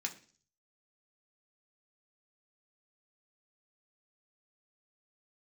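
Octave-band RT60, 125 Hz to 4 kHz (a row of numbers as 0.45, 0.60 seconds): 0.70, 0.55, 0.45, 0.40, 0.45, 0.55 seconds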